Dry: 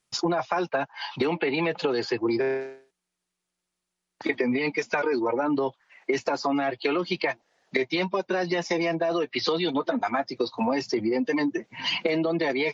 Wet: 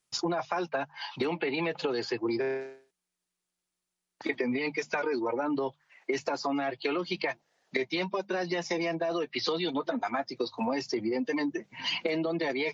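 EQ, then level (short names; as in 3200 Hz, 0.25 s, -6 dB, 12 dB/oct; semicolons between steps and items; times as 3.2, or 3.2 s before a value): high shelf 5600 Hz +4.5 dB; notches 50/100/150/200 Hz; -5.0 dB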